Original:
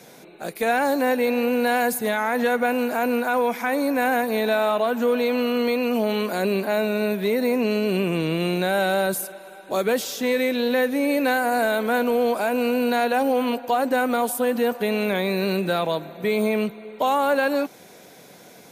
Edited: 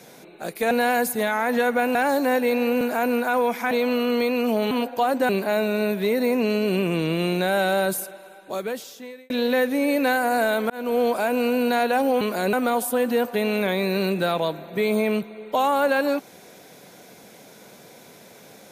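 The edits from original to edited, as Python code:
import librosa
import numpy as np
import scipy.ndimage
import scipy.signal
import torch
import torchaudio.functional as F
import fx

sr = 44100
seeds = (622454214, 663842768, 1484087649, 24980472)

y = fx.edit(x, sr, fx.move(start_s=0.71, length_s=0.86, to_s=2.81),
    fx.cut(start_s=3.71, length_s=1.47),
    fx.swap(start_s=6.18, length_s=0.32, other_s=13.42, other_length_s=0.58),
    fx.fade_out_span(start_s=9.1, length_s=1.41),
    fx.fade_in_span(start_s=11.91, length_s=0.28), tone=tone)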